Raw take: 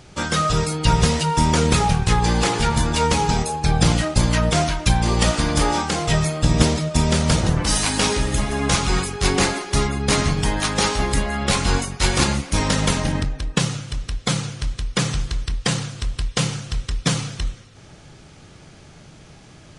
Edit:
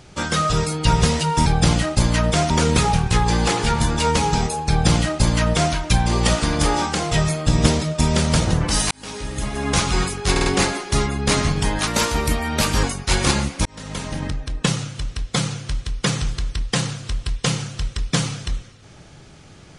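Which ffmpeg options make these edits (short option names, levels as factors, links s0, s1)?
-filter_complex "[0:a]asplit=10[s0][s1][s2][s3][s4][s5][s6][s7][s8][s9];[s0]atrim=end=1.462[s10];[s1]atrim=start=3.648:end=4.692[s11];[s2]atrim=start=1.458:end=7.87,asetpts=PTS-STARTPTS,afade=t=out:st=6.408:d=0.004:c=hsin[s12];[s3]atrim=start=7.87:end=9.322,asetpts=PTS-STARTPTS,afade=t=in:d=0.86[s13];[s4]atrim=start=9.268:end=9.322[s14];[s5]atrim=start=9.268:end=9.322[s15];[s6]atrim=start=9.268:end=10.684[s16];[s7]atrim=start=10.68:end=11.76,asetpts=PTS-STARTPTS,asetrate=49392,aresample=44100[s17];[s8]atrim=start=11.756:end=12.58,asetpts=PTS-STARTPTS,afade=t=out:st=0.82:d=0.004:c=hsin[s18];[s9]atrim=start=12.58,asetpts=PTS-STARTPTS,afade=t=in:d=0.92[s19];[s10][s11]acrossfade=d=0.004:c1=hsin:c2=hsin[s20];[s12][s13]concat=n=2:v=0:a=1[s21];[s20][s21]acrossfade=d=0.004:c1=hsin:c2=hsin[s22];[s22][s14]acrossfade=d=0.004:c1=hsin:c2=hsin[s23];[s23][s15]acrossfade=d=0.004:c1=hsin:c2=hsin[s24];[s24][s16]acrossfade=d=0.004:c1=hsin:c2=hsin[s25];[s25][s17]acrossfade=d=0.004:c1=hsin:c2=hsin[s26];[s18][s19]concat=n=2:v=0:a=1[s27];[s26][s27]acrossfade=d=0.004:c1=hsin:c2=hsin"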